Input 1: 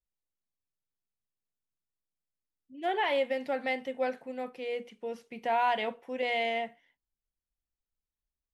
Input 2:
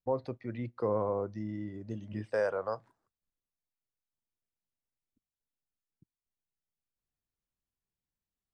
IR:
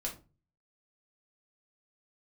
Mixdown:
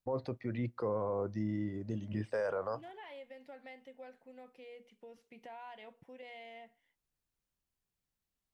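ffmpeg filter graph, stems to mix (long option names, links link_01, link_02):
-filter_complex "[0:a]acompressor=threshold=-44dB:ratio=2.5,volume=-9dB[link_01];[1:a]volume=2.5dB[link_02];[link_01][link_02]amix=inputs=2:normalize=0,alimiter=level_in=2.5dB:limit=-24dB:level=0:latency=1:release=15,volume=-2.5dB"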